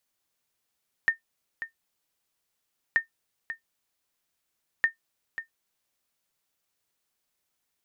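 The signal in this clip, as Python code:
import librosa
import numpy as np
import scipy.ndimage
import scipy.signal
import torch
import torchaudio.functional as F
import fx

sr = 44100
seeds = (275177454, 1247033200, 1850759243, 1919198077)

y = fx.sonar_ping(sr, hz=1820.0, decay_s=0.12, every_s=1.88, pings=3, echo_s=0.54, echo_db=-12.0, level_db=-13.0)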